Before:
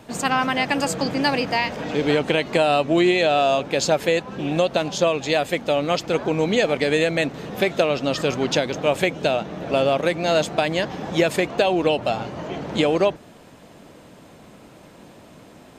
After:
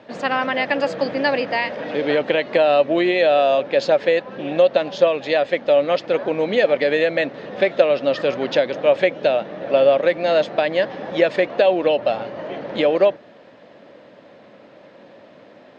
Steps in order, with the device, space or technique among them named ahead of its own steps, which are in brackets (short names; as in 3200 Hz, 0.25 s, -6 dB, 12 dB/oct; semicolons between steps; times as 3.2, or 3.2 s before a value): kitchen radio (speaker cabinet 160–4600 Hz, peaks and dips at 160 Hz -4 dB, 560 Hz +10 dB, 1800 Hz +6 dB); gain -2 dB